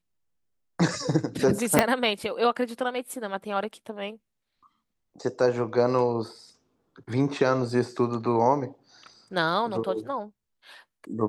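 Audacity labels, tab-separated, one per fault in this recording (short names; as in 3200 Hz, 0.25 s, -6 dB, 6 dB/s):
1.790000	1.790000	pop -2 dBFS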